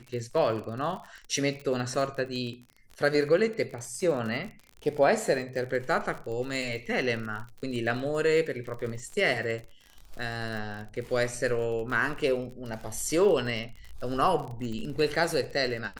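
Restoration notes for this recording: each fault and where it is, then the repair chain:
surface crackle 47 per second −35 dBFS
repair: click removal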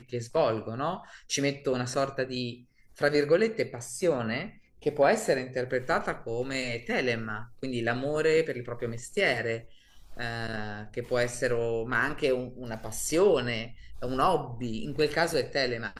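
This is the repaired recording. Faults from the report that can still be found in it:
none of them is left

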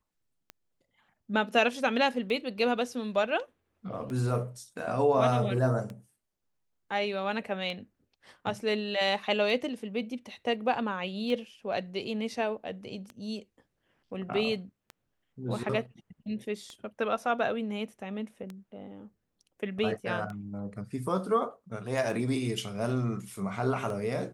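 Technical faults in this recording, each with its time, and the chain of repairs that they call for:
scratch tick 33 1/3 rpm −26 dBFS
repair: click removal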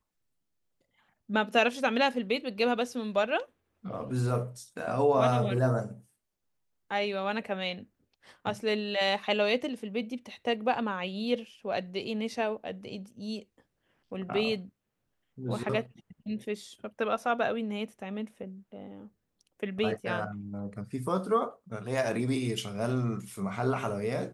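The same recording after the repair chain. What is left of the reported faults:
none of them is left

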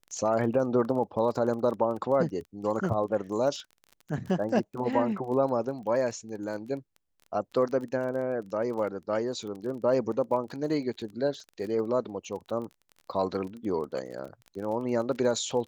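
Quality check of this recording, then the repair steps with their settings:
surface crackle 24 per second −37 dBFS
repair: click removal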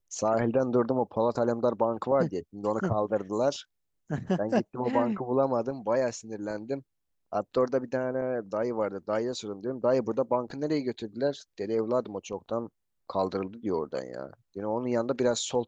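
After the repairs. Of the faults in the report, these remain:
none of them is left

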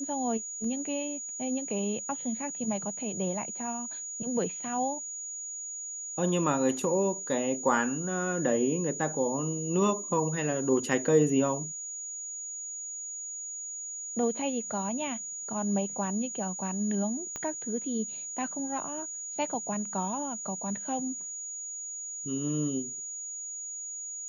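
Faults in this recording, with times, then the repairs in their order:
whistle 6,800 Hz −36 dBFS
0:17.36: click −21 dBFS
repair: click removal
notch filter 6,800 Hz, Q 30

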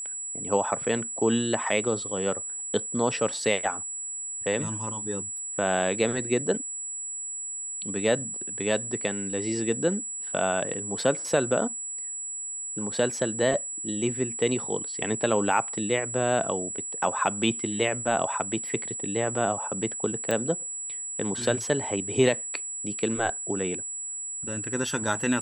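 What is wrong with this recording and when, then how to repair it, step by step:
whistle 7,800 Hz −32 dBFS
0:20.31: click −13 dBFS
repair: click removal
notch filter 7,800 Hz, Q 30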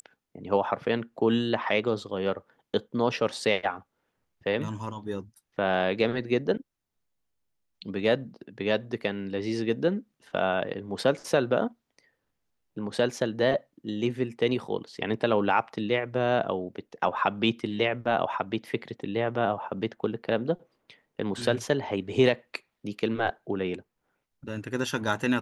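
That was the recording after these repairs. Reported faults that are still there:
none of them is left

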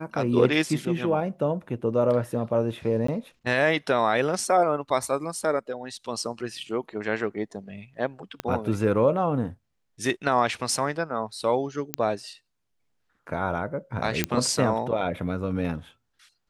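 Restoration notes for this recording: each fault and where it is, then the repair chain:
0:03.07–0:03.08: drop-out 14 ms
0:08.40: click −15 dBFS
0:11.94: click −7 dBFS
0:14.24: click −6 dBFS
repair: click removal
repair the gap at 0:03.07, 14 ms

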